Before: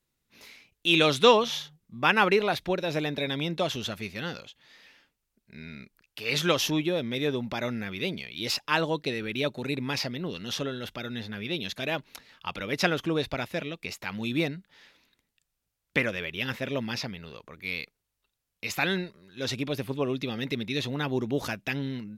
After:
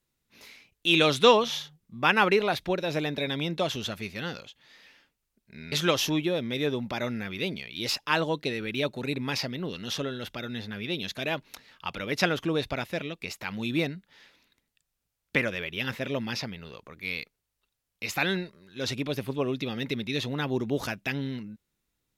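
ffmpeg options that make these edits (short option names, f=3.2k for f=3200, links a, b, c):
-filter_complex "[0:a]asplit=2[a][b];[a]atrim=end=5.722[c];[b]atrim=start=6.328[d];[c][d]acrossfade=d=0.004:c1=hsin:c2=hsin"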